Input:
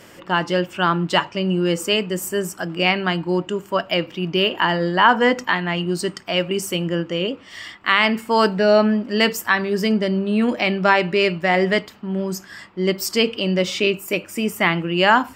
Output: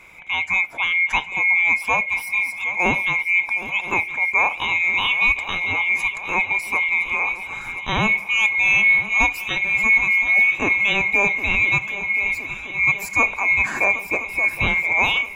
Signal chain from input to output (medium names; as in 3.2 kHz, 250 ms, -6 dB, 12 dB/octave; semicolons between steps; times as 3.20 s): split-band scrambler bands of 2 kHz; resonant high shelf 2.6 kHz -7 dB, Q 3; on a send: shuffle delay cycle 1017 ms, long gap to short 3:1, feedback 65%, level -14.5 dB; on the sum: trim -1.5 dB